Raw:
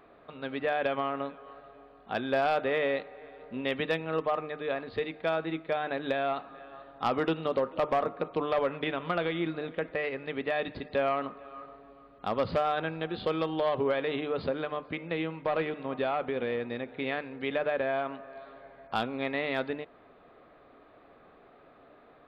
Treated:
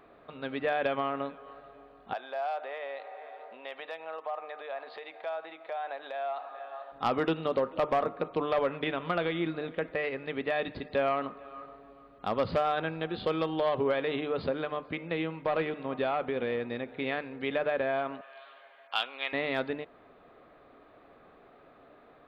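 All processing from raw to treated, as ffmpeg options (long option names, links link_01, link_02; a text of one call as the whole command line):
ffmpeg -i in.wav -filter_complex "[0:a]asettb=1/sr,asplit=3[link_01][link_02][link_03];[link_01]atrim=end=2.134[link_04];[link_02]atrim=start=2.13:end=6.92,asetpts=PTS-STARTPTS,afade=type=in:duration=0.004:curve=qsin,afade=type=out:start_time=4.786:duration=0.004:curve=qsin,acompressor=threshold=-38dB:ratio=4:attack=3.2:release=140:knee=1:detection=peak,highpass=frequency=710:width_type=q:width=2.6[link_05];[link_03]atrim=start=6.916[link_06];[link_04][link_05]acrossfade=duration=0.004:curve1=hsin:curve2=qsin[link_07];[link_07][link_06]acrossfade=duration=0.004:curve1=qsin:curve2=hsin,asettb=1/sr,asplit=3[link_08][link_09][link_10];[link_08]atrim=end=18.214[link_11];[link_09]atrim=start=18.21:end=19.33,asetpts=PTS-STARTPTS,afade=type=in:duration=0.004:curve=qsin,afade=type=out:start_time=1.116:duration=0.004:curve=qsin,highpass=900,equalizer=frequency=3000:width_type=o:width=0.47:gain=11.5[link_12];[link_10]atrim=start=19.326[link_13];[link_11][link_12]acrossfade=duration=0.004:curve1=hsin:curve2=qsin[link_14];[link_14][link_13]acrossfade=duration=0.004:curve1=qsin:curve2=hsin" out.wav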